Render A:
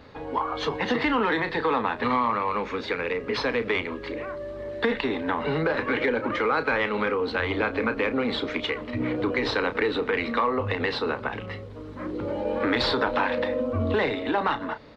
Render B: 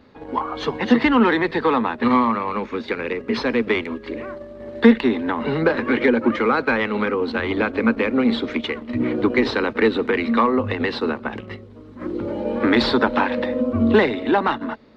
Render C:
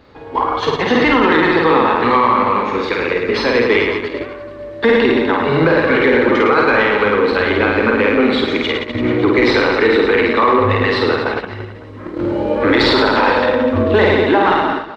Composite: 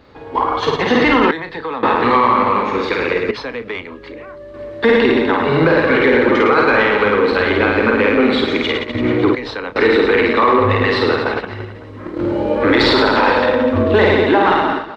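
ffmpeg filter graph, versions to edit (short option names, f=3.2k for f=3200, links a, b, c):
-filter_complex "[0:a]asplit=3[a][b][c];[2:a]asplit=4[d][e][f][g];[d]atrim=end=1.312[h];[a]atrim=start=1.308:end=1.832[i];[e]atrim=start=1.828:end=3.312[j];[b]atrim=start=3.308:end=4.542[k];[f]atrim=start=4.538:end=9.352[l];[c]atrim=start=9.348:end=9.762[m];[g]atrim=start=9.758[n];[h][i]acrossfade=d=0.004:c1=hsin:c2=hsin[o];[o][j]acrossfade=d=0.004:c1=hsin:c2=hsin[p];[p][k]acrossfade=d=0.004:c1=hsin:c2=hsin[q];[q][l]acrossfade=d=0.004:c1=hsin:c2=hsin[r];[r][m]acrossfade=d=0.004:c1=hsin:c2=hsin[s];[s][n]acrossfade=d=0.004:c1=hsin:c2=hsin"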